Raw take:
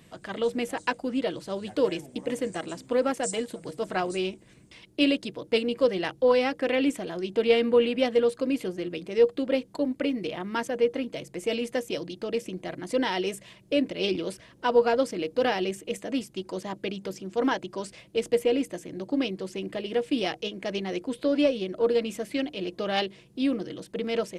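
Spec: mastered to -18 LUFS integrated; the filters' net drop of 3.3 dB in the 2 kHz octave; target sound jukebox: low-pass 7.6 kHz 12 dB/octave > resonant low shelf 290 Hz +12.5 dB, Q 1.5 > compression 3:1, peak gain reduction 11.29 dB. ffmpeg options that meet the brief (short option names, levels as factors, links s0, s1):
-af "lowpass=7600,lowshelf=f=290:t=q:w=1.5:g=12.5,equalizer=f=2000:t=o:g=-4,acompressor=threshold=0.0398:ratio=3,volume=4.22"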